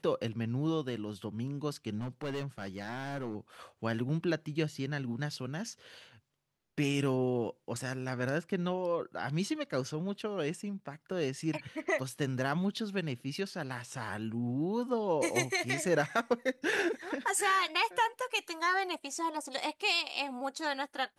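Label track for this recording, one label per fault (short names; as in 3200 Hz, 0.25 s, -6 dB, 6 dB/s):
1.980000	3.360000	clipped -32.5 dBFS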